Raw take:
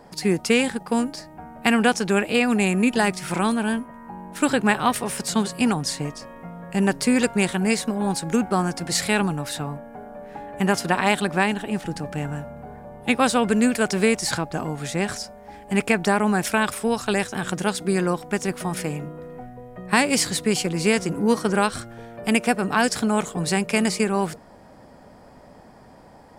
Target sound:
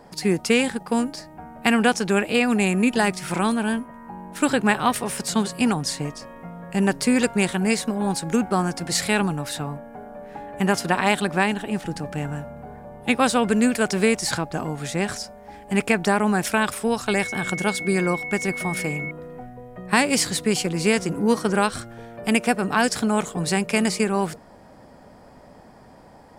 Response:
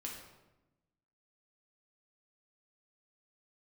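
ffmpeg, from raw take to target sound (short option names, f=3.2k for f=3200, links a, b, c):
-filter_complex "[0:a]asettb=1/sr,asplit=3[a][b][c];[a]atrim=end=17.084[d];[b]atrim=start=17.08:end=19.11,asetpts=PTS-STARTPTS,afade=t=in:d=0.004:c=qsin,afade=t=out:st=2.026:d=0.004:c=qsin,aeval=exprs='val(0)+0.0355*sin(2*PI*2200*n/s)':c=same[e];[c]atrim=start=19.106[f];[d][e]acrossfade=d=0.004:c1=hsin:c2=qsin[g];[g][f]acrossfade=d=0.004:c1=qsin:c2=hsin"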